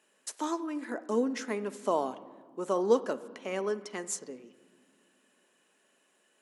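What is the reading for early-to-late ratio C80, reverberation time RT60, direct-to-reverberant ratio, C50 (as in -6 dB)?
17.5 dB, 1.7 s, 11.5 dB, 15.5 dB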